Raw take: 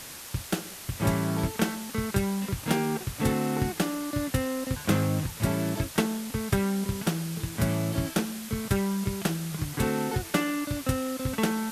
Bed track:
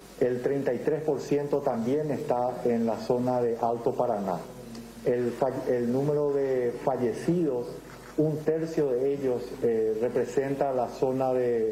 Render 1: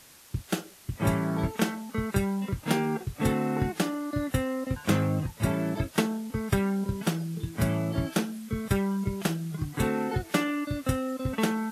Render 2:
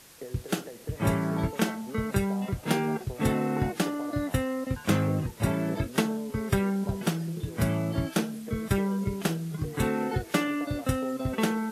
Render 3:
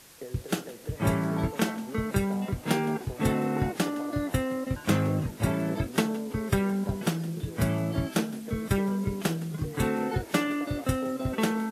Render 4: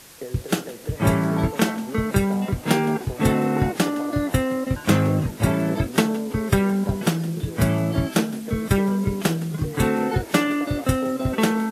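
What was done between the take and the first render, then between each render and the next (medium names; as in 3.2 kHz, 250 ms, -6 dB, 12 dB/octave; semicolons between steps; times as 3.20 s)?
noise print and reduce 11 dB
add bed track -16.5 dB
frequency-shifting echo 165 ms, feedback 55%, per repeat +49 Hz, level -20 dB
trim +6.5 dB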